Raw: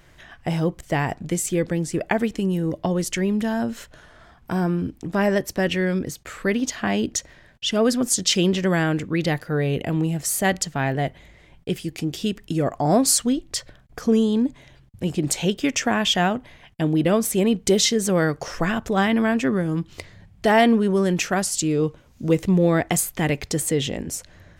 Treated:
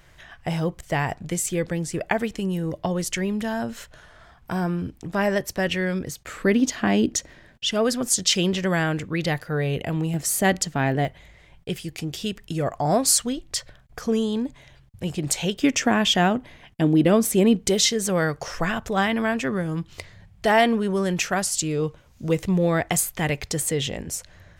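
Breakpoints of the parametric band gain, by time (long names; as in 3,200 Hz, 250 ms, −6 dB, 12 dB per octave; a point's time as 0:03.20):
parametric band 280 Hz 1.2 octaves
−6 dB
from 0:06.28 +4.5 dB
from 0:07.65 −5.5 dB
from 0:10.14 +2.5 dB
from 0:11.05 −7 dB
from 0:15.62 +3 dB
from 0:17.68 −6.5 dB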